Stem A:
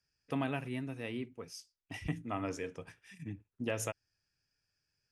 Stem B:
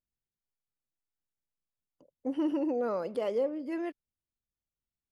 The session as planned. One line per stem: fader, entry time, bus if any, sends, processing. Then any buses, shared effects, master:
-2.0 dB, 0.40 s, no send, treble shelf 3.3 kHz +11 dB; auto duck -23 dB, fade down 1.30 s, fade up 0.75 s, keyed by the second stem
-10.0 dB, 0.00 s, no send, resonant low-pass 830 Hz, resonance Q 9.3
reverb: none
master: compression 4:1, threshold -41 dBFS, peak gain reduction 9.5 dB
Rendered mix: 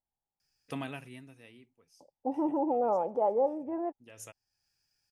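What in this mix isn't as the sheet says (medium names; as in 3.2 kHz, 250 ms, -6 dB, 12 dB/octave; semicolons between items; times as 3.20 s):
stem B -10.0 dB -> -2.5 dB; master: missing compression 4:1, threshold -41 dBFS, peak gain reduction 9.5 dB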